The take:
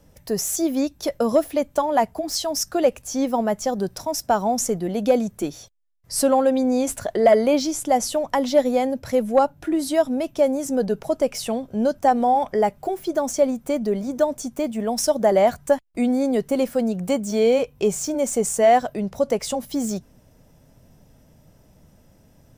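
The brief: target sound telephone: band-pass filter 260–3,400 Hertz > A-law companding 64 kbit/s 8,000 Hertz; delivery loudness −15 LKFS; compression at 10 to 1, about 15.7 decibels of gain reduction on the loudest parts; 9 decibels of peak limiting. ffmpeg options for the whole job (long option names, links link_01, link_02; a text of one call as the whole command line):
ffmpeg -i in.wav -af "acompressor=threshold=-28dB:ratio=10,alimiter=level_in=1dB:limit=-24dB:level=0:latency=1,volume=-1dB,highpass=260,lowpass=3400,volume=21.5dB" -ar 8000 -c:a pcm_alaw out.wav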